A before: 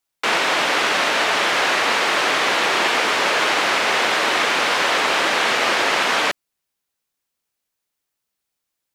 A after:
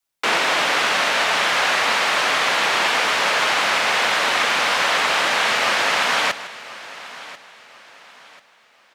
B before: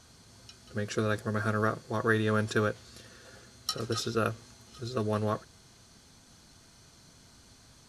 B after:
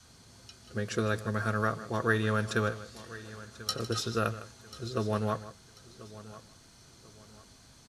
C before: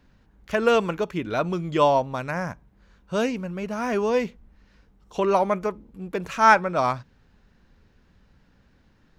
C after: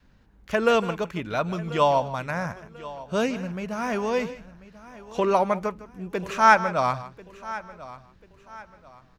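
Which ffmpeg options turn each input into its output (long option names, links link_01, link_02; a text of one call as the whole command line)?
ffmpeg -i in.wav -filter_complex "[0:a]asplit=2[link_01][link_02];[link_02]aecho=0:1:156:0.168[link_03];[link_01][link_03]amix=inputs=2:normalize=0,adynamicequalizer=threshold=0.00891:dfrequency=350:dqfactor=1.6:tfrequency=350:tqfactor=1.6:attack=5:release=100:ratio=0.375:range=4:mode=cutabove:tftype=bell,asplit=2[link_04][link_05];[link_05]aecho=0:1:1040|2080|3120:0.133|0.0453|0.0154[link_06];[link_04][link_06]amix=inputs=2:normalize=0" out.wav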